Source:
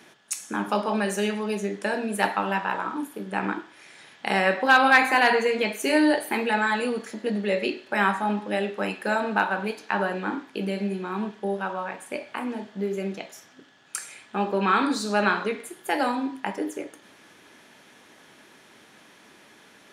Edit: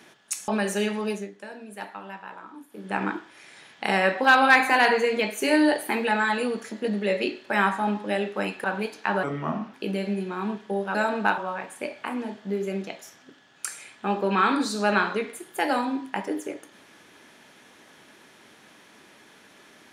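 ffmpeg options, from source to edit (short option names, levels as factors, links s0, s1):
-filter_complex "[0:a]asplit=9[s0][s1][s2][s3][s4][s5][s6][s7][s8];[s0]atrim=end=0.482[s9];[s1]atrim=start=0.898:end=1.73,asetpts=PTS-STARTPTS,afade=t=out:st=0.612:d=0.22:silence=0.211349[s10];[s2]atrim=start=1.73:end=3.12,asetpts=PTS-STARTPTS,volume=0.211[s11];[s3]atrim=start=3.12:end=9.062,asetpts=PTS-STARTPTS,afade=t=in:d=0.22:silence=0.211349[s12];[s4]atrim=start=9.488:end=10.084[s13];[s5]atrim=start=10.08:end=10.47,asetpts=PTS-STARTPTS,asetrate=33957,aresample=44100,atrim=end_sample=22336,asetpts=PTS-STARTPTS[s14];[s6]atrim=start=10.466:end=11.682[s15];[s7]atrim=start=9.058:end=9.492[s16];[s8]atrim=start=11.678[s17];[s10][s11][s12]concat=n=3:v=0:a=1[s18];[s9][s18]acrossfade=d=0.004:c1=hsin:c2=hsin[s19];[s19][s13]acrossfade=d=0.004:c1=hsin:c2=hsin[s20];[s20][s14]acrossfade=d=0.004:c1=hsin:c2=hsin[s21];[s21][s15]acrossfade=d=0.004:c1=hsin:c2=hsin[s22];[s22][s16]acrossfade=d=0.004:c1=hsin:c2=hsin[s23];[s23][s17]acrossfade=d=0.004:c1=hsin:c2=hsin"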